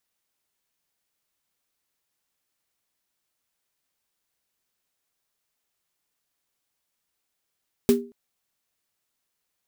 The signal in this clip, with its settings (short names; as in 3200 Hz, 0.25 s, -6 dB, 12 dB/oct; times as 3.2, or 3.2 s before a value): snare drum length 0.23 s, tones 240 Hz, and 400 Hz, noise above 660 Hz, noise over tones -11.5 dB, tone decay 0.35 s, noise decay 0.16 s